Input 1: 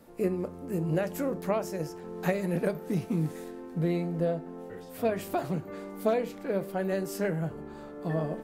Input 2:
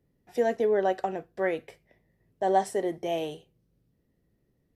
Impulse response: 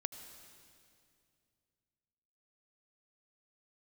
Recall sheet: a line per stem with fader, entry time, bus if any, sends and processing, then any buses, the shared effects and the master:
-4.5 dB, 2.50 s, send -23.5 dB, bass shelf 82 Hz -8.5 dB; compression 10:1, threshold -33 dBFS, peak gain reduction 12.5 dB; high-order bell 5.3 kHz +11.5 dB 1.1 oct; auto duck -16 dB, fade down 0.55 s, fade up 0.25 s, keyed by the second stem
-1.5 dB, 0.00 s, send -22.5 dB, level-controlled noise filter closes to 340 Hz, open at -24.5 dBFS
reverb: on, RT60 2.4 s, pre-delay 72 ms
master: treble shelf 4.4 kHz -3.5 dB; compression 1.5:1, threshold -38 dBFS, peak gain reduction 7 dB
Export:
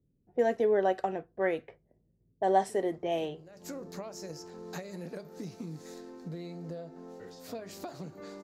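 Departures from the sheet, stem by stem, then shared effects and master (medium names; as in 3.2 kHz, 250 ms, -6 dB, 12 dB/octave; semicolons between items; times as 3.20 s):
stem 2: send off; master: missing compression 1.5:1, threshold -38 dBFS, peak gain reduction 7 dB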